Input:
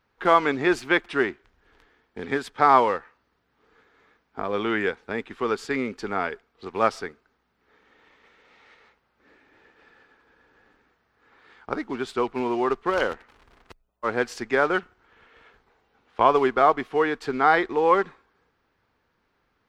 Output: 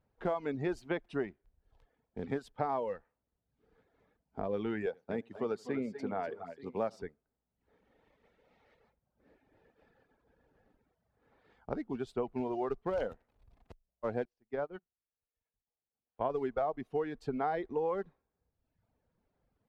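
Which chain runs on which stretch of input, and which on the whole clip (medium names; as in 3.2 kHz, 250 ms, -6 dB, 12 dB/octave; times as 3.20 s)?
4.86–7.02 s: high-pass 120 Hz + multi-tap echo 82/240/252/887 ms -18.5/-12/-11/-17.5 dB
14.25–16.30 s: low-pass 4.7 kHz + upward expansion 2.5:1, over -32 dBFS
whole clip: reverb removal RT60 0.87 s; FFT filter 170 Hz 0 dB, 360 Hz -8 dB, 620 Hz -2 dB, 1.2 kHz -16 dB; compression 10:1, threshold -29 dBFS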